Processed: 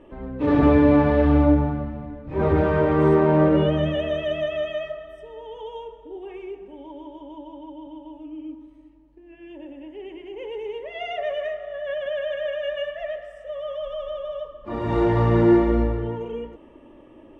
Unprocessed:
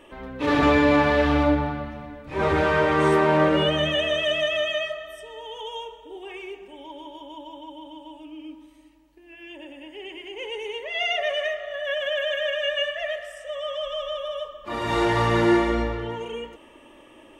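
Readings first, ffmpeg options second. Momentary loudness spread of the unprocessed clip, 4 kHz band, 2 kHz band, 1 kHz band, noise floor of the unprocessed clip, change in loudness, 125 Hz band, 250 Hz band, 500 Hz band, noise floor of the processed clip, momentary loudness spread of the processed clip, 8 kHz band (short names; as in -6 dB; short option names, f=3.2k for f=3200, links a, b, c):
22 LU, -11.5 dB, -8.0 dB, -3.0 dB, -50 dBFS, +1.5 dB, +6.0 dB, +4.0 dB, +1.5 dB, -49 dBFS, 22 LU, under -15 dB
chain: -af "lowpass=f=1.8k:p=1,tiltshelf=f=670:g=6.5"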